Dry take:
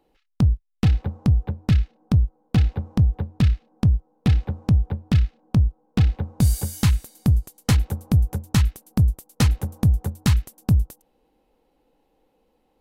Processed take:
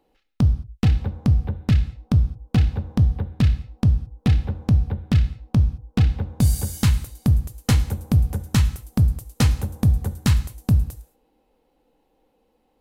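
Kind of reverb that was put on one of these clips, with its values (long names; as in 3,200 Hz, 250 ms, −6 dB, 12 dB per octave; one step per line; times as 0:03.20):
reverb whose tail is shaped and stops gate 240 ms falling, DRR 10.5 dB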